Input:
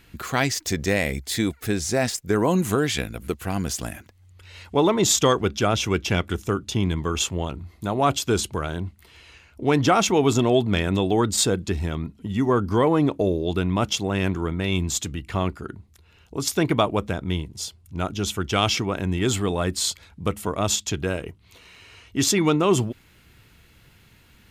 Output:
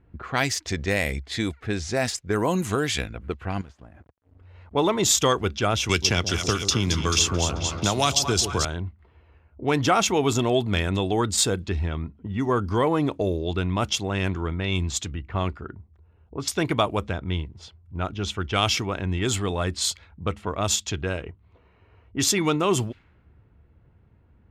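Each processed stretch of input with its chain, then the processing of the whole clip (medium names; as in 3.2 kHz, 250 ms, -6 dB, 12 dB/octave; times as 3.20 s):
3.61–4.75 s: treble shelf 6.5 kHz +10 dB + compression 20:1, threshold -36 dBFS + small samples zeroed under -48.5 dBFS
5.89–8.65 s: peaking EQ 5.4 kHz +11.5 dB + two-band feedback delay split 840 Hz, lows 127 ms, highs 218 ms, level -10.5 dB + three bands compressed up and down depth 100%
whole clip: bass shelf 470 Hz -6 dB; level-controlled noise filter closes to 670 Hz, open at -20.5 dBFS; peaking EQ 73 Hz +8 dB 1.2 oct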